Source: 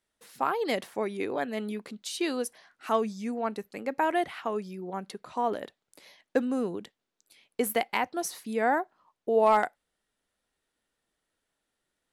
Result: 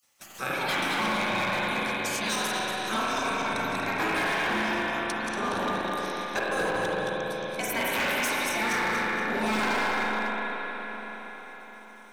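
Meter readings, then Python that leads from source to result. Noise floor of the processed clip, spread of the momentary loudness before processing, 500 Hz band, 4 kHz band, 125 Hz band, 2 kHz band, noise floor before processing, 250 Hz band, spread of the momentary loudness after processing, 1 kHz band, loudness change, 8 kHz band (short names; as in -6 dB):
-47 dBFS, 11 LU, -2.0 dB, +10.5 dB, +7.0 dB, +10.5 dB, -84 dBFS, +0.5 dB, 10 LU, +2.0 dB, +2.5 dB, +6.0 dB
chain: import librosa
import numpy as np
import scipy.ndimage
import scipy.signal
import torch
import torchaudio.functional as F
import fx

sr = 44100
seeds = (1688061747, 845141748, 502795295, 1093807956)

y = fx.reverse_delay_fb(x, sr, ms=118, feedback_pct=60, wet_db=-4.0)
y = fx.ripple_eq(y, sr, per_octave=1.6, db=10)
y = y + 10.0 ** (-20.5 / 20.0) * np.pad(y, (int(287 * sr / 1000.0), 0))[:len(y)]
y = fx.spec_gate(y, sr, threshold_db=-15, keep='weak')
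y = fx.peak_eq(y, sr, hz=6500.0, db=6.0, octaves=0.32)
y = fx.rev_spring(y, sr, rt60_s=3.6, pass_ms=(37, 46), chirp_ms=70, drr_db=-5.5)
y = np.clip(y, -10.0 ** (-29.0 / 20.0), 10.0 ** (-29.0 / 20.0))
y = fx.band_squash(y, sr, depth_pct=40)
y = F.gain(torch.from_numpy(y), 6.0).numpy()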